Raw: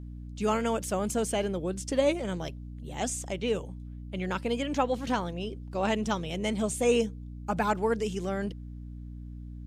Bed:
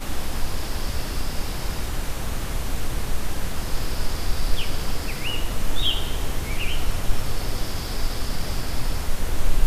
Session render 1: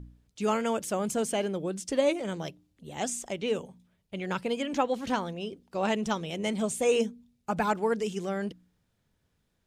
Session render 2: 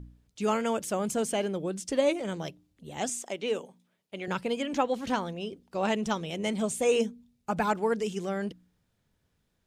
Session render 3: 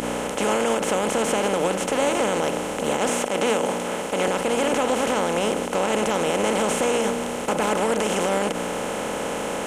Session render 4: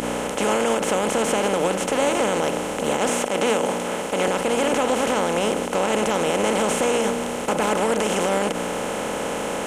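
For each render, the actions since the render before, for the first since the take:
hum removal 60 Hz, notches 5
0:03.09–0:04.28: high-pass filter 260 Hz
compressor on every frequency bin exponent 0.2; brickwall limiter −12 dBFS, peak gain reduction 8.5 dB
level +1 dB

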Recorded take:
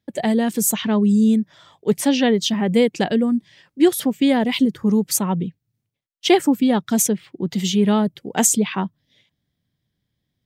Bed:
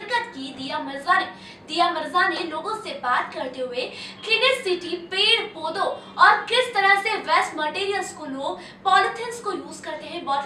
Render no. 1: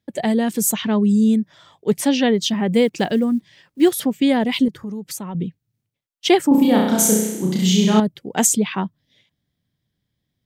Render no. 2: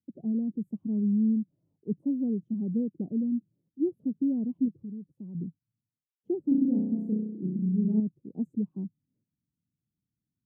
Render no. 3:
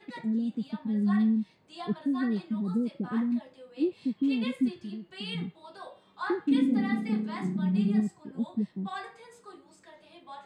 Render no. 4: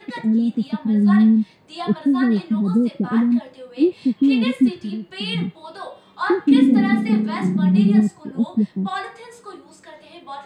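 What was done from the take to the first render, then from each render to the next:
0:02.73–0:04.02: one scale factor per block 7 bits; 0:04.68–0:05.35: downward compressor 3 to 1, threshold −30 dBFS; 0:06.48–0:08.00: flutter between parallel walls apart 5.6 metres, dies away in 0.93 s
inverse Chebyshev low-pass filter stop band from 1,700 Hz, stop band 80 dB; spectral tilt +4 dB per octave
mix in bed −21 dB
level +11 dB

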